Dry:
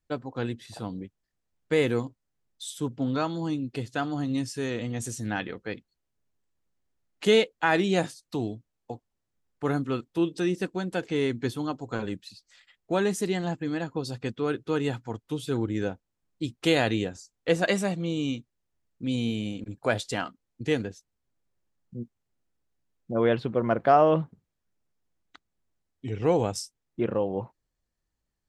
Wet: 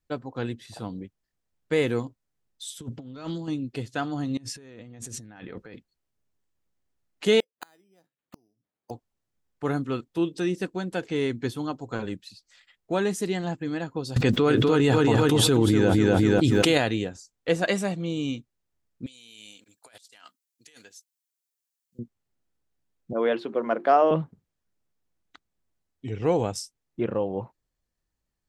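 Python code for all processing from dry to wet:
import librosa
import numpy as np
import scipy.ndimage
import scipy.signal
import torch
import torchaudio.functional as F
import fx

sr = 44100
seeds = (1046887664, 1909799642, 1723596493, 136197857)

y = fx.chain(x, sr, fx.dynamic_eq(hz=900.0, q=1.2, threshold_db=-41.0, ratio=4.0, max_db=-7),
    fx.over_compress(threshold_db=-34.0, ratio=-0.5),
    fx.doppler_dist(depth_ms=0.13), at=(2.81, 3.48))
y = fx.chain(y, sr, fx.high_shelf(hz=4300.0, db=-8.0),
    fx.notch(hz=3000.0, q=25.0),
    fx.over_compress(threshold_db=-43.0, ratio=-1.0), at=(4.37, 5.74))
y = fx.chain(y, sr, fx.highpass(hz=170.0, slope=12),
    fx.gate_flip(shuts_db=-27.0, range_db=-38),
    fx.resample_bad(factor=8, down='filtered', up='hold'), at=(7.4, 8.91))
y = fx.chain(y, sr, fx.echo_feedback(ms=247, feedback_pct=33, wet_db=-7.0),
    fx.env_flatten(amount_pct=100), at=(14.16, 16.78))
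y = fx.chain(y, sr, fx.differentiator(),
    fx.over_compress(threshold_db=-52.0, ratio=-1.0), at=(19.06, 21.99))
y = fx.chain(y, sr, fx.highpass(hz=240.0, slope=24),
    fx.hum_notches(base_hz=50, count=8), at=(23.13, 24.11))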